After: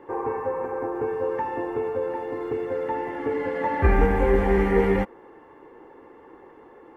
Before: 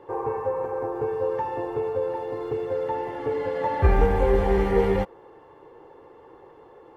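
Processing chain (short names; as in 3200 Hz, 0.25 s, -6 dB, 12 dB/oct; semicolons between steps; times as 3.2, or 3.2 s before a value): graphic EQ 125/250/500/2000/4000 Hz -6/+9/-3/+7/-7 dB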